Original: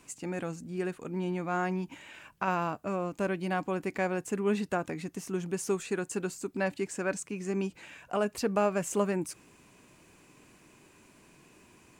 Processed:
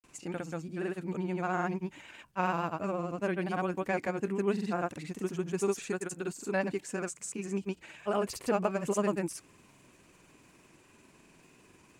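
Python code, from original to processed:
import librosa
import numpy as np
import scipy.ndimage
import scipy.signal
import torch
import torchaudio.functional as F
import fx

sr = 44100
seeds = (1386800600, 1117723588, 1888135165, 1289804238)

y = fx.vibrato(x, sr, rate_hz=14.0, depth_cents=51.0)
y = fx.granulator(y, sr, seeds[0], grain_ms=100.0, per_s=20.0, spray_ms=100.0, spread_st=0)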